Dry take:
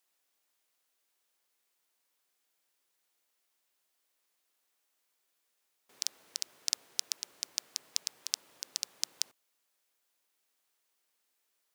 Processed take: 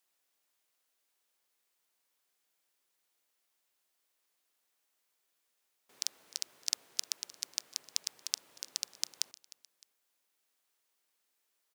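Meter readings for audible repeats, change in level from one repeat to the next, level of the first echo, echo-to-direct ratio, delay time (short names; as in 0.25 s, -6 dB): 2, -7.0 dB, -20.5 dB, -19.5 dB, 0.306 s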